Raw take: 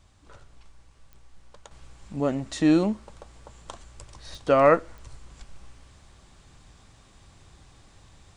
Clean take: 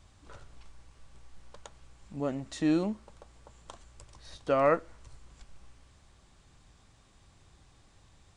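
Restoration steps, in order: de-click; trim 0 dB, from 1.71 s -7 dB

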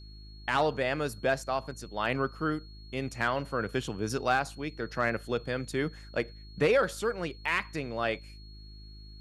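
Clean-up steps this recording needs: de-hum 52.4 Hz, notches 7; band-stop 4.3 kHz, Q 30

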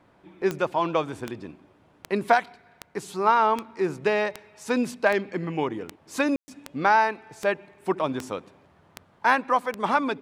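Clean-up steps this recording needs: de-click; room tone fill 6.36–6.48 s

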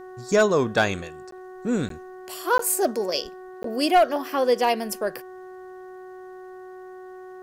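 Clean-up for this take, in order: clip repair -11 dBFS; de-hum 370.7 Hz, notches 5; interpolate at 1.31/1.89/2.58/3.63 s, 13 ms

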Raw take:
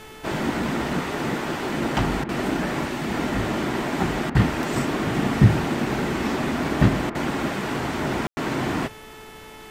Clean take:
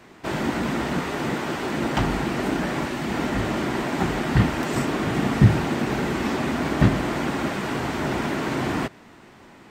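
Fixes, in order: de-hum 435.3 Hz, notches 8; room tone fill 8.27–8.37 s; interpolate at 2.24/4.30/7.10 s, 48 ms; noise print and reduce 6 dB

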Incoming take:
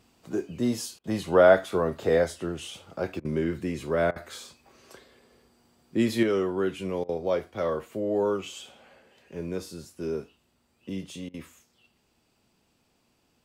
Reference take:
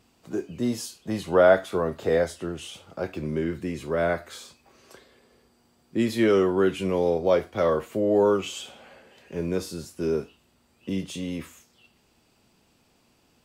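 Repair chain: interpolate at 0.99/3.20/4.11/7.04/11.29 s, 48 ms; trim 0 dB, from 6.23 s +5.5 dB

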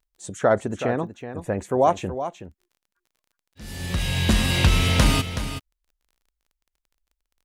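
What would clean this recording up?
de-click; inverse comb 374 ms -10.5 dB

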